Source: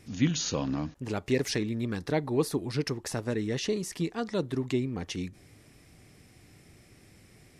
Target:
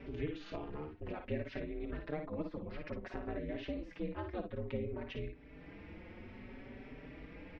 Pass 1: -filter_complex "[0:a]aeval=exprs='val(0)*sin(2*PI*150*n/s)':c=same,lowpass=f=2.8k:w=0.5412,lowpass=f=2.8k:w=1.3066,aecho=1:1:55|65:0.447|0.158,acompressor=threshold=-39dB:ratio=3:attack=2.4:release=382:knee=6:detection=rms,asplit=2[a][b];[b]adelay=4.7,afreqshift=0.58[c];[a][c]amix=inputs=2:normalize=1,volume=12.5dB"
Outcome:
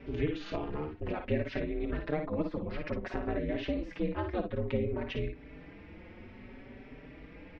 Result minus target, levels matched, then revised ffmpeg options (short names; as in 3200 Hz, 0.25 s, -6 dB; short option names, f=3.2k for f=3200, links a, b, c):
compressor: peak gain reduction -7.5 dB
-filter_complex "[0:a]aeval=exprs='val(0)*sin(2*PI*150*n/s)':c=same,lowpass=f=2.8k:w=0.5412,lowpass=f=2.8k:w=1.3066,aecho=1:1:55|65:0.447|0.158,acompressor=threshold=-50dB:ratio=3:attack=2.4:release=382:knee=6:detection=rms,asplit=2[a][b];[b]adelay=4.7,afreqshift=0.58[c];[a][c]amix=inputs=2:normalize=1,volume=12.5dB"